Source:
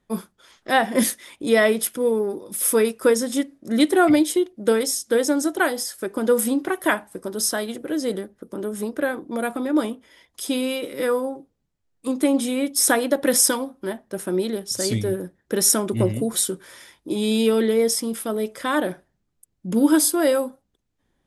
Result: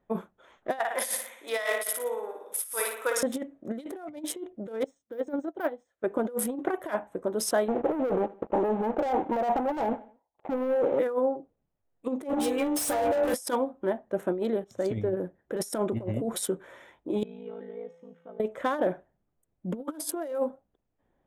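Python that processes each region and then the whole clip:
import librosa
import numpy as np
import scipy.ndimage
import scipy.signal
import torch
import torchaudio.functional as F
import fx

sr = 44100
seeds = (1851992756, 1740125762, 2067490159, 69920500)

y = fx.chain(x, sr, fx.highpass(hz=1100.0, slope=12),
    fx.high_shelf(hz=6900.0, db=4.5),
    fx.room_flutter(wall_m=9.8, rt60_s=0.81), at=(0.79, 3.23))
y = fx.chain(y, sr, fx.low_shelf(hz=220.0, db=7.0),
    fx.resample_bad(factor=3, down='filtered', up='hold'),
    fx.upward_expand(threshold_db=-32.0, expansion=2.5), at=(4.84, 6.04))
y = fx.chain(y, sr, fx.ladder_lowpass(hz=900.0, resonance_pct=80),
    fx.leveller(passes=5),
    fx.echo_feedback(ms=78, feedback_pct=42, wet_db=-21.5), at=(7.68, 10.99))
y = fx.chain(y, sr, fx.stiff_resonator(f0_hz=70.0, decay_s=0.76, stiffness=0.008),
    fx.leveller(passes=5), at=(12.29, 13.34))
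y = fx.chain(y, sr, fx.high_shelf(hz=4800.0, db=-10.0),
    fx.upward_expand(threshold_db=-40.0, expansion=1.5), at=(14.64, 15.17))
y = fx.chain(y, sr, fx.lowpass(hz=2800.0, slope=12),
    fx.ring_mod(carrier_hz=27.0),
    fx.comb_fb(f0_hz=170.0, decay_s=0.91, harmonics='odd', damping=0.0, mix_pct=90), at=(17.23, 18.4))
y = fx.wiener(y, sr, points=9)
y = fx.over_compress(y, sr, threshold_db=-24.0, ratio=-0.5)
y = fx.peak_eq(y, sr, hz=640.0, db=8.5, octaves=1.3)
y = y * librosa.db_to_amplitude(-7.5)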